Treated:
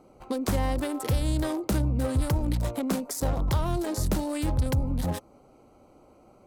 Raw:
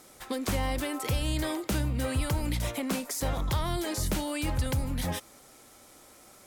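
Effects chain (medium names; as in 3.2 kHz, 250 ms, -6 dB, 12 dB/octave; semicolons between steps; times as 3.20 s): local Wiener filter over 25 samples; dynamic bell 2.8 kHz, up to -4 dB, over -55 dBFS, Q 1.1; trim +4 dB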